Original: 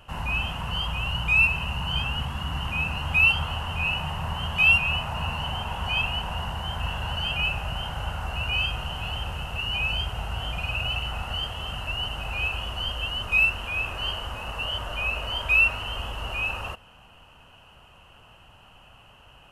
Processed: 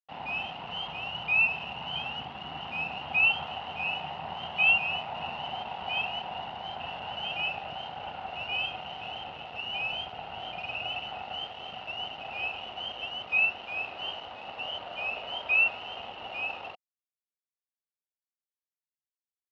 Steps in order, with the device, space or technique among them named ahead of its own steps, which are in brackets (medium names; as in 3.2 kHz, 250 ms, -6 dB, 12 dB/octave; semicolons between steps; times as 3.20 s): blown loudspeaker (crossover distortion -39.5 dBFS; cabinet simulation 230–3700 Hz, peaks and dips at 750 Hz +9 dB, 1.1 kHz -6 dB, 1.6 kHz -6 dB); trim -3 dB